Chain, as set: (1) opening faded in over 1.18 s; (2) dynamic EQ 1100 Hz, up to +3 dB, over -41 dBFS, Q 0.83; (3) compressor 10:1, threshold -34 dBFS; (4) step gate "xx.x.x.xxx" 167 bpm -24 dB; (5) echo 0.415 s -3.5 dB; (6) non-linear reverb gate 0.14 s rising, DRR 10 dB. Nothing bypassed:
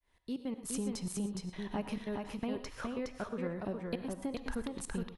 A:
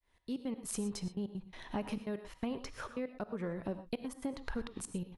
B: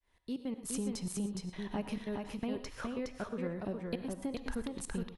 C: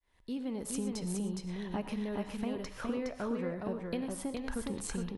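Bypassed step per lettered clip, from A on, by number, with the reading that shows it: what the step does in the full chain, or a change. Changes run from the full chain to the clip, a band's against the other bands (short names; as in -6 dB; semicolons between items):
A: 5, echo-to-direct -2.5 dB to -10.0 dB; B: 2, 1 kHz band -1.5 dB; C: 4, crest factor change -2.0 dB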